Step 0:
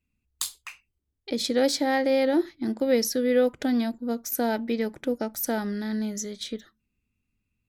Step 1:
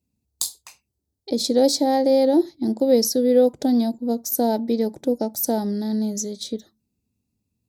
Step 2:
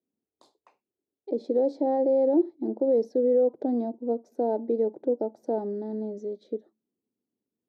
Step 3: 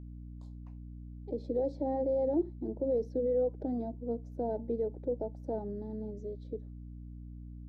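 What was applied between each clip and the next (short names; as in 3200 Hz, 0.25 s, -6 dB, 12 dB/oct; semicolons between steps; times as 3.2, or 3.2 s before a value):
HPF 83 Hz 12 dB/oct; band shelf 1900 Hz -15.5 dB; gain +5.5 dB
limiter -12.5 dBFS, peak gain reduction 7.5 dB; ladder band-pass 470 Hz, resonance 35%; gain +8 dB
bin magnitudes rounded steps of 15 dB; hum 60 Hz, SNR 10 dB; gain -7.5 dB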